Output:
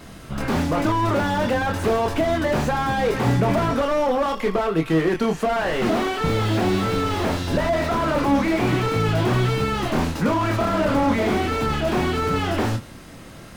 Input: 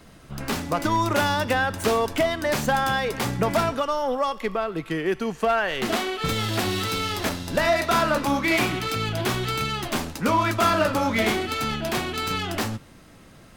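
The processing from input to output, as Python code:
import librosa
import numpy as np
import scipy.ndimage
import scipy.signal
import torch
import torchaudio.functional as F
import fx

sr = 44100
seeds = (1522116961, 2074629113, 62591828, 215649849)

p1 = fx.over_compress(x, sr, threshold_db=-26.0, ratio=-1.0)
p2 = x + (p1 * librosa.db_to_amplitude(0.0))
p3 = fx.vibrato(p2, sr, rate_hz=1.5, depth_cents=14.0)
p4 = fx.doubler(p3, sr, ms=25.0, db=-5.5)
y = fx.slew_limit(p4, sr, full_power_hz=88.0)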